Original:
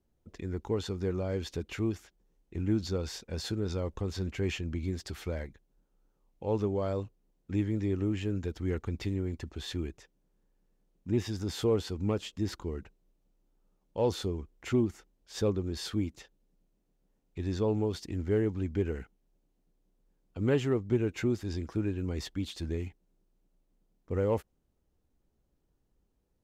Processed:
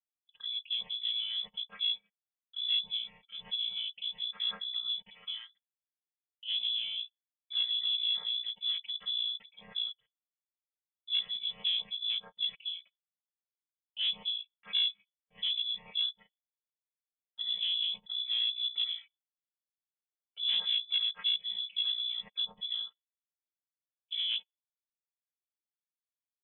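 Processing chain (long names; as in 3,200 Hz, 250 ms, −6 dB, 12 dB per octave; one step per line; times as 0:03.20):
channel vocoder with a chord as carrier major triad, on A#3
noise reduction from a noise print of the clip's start 14 dB
noise gate with hold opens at −60 dBFS
parametric band 520 Hz −5.5 dB 0.25 octaves
soft clipping −26 dBFS, distortion −11 dB
voice inversion scrambler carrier 3,700 Hz
level +1.5 dB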